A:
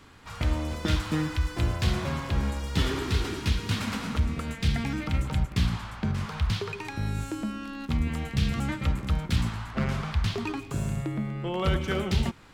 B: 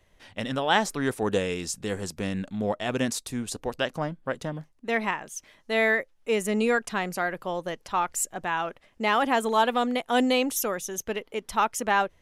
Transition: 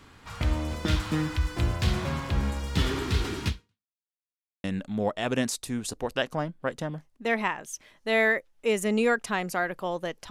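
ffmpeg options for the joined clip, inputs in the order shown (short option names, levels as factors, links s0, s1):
-filter_complex "[0:a]apad=whole_dur=10.3,atrim=end=10.3,asplit=2[s0][s1];[s0]atrim=end=3.95,asetpts=PTS-STARTPTS,afade=t=out:st=3.48:d=0.47:c=exp[s2];[s1]atrim=start=3.95:end=4.64,asetpts=PTS-STARTPTS,volume=0[s3];[1:a]atrim=start=2.27:end=7.93,asetpts=PTS-STARTPTS,afade=t=in:d=0.004:c=hsin[s4];[s2][s3][s4]concat=n=3:v=0:a=1"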